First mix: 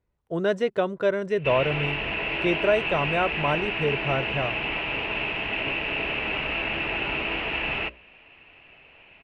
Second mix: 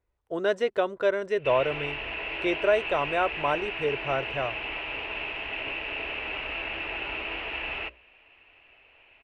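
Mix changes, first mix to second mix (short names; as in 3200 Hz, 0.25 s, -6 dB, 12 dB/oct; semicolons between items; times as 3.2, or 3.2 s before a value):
background -5.0 dB; master: add bell 170 Hz -13.5 dB 1 oct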